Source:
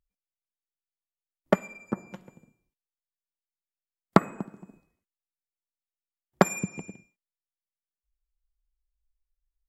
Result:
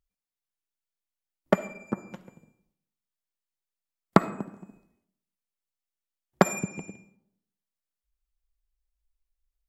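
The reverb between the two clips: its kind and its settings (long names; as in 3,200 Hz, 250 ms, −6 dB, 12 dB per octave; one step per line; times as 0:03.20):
comb and all-pass reverb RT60 0.8 s, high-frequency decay 0.5×, pre-delay 15 ms, DRR 16 dB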